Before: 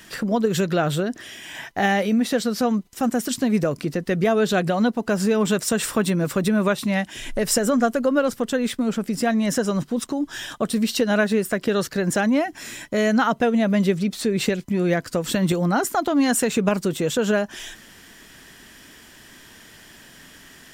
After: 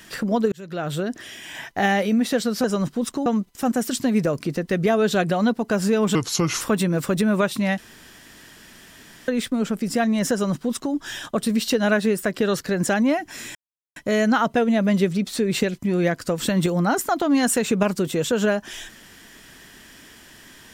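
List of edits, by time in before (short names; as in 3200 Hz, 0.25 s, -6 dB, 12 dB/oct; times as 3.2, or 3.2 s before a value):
0.52–1.15 fade in
5.53–5.88 speed 76%
7.05–8.55 room tone
9.59–10.21 copy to 2.64
12.82 insert silence 0.41 s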